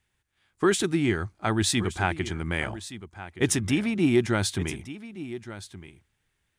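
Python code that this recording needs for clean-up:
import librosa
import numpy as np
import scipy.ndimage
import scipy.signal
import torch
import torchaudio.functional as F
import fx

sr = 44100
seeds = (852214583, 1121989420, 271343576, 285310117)

y = fx.fix_echo_inverse(x, sr, delay_ms=1171, level_db=-14.5)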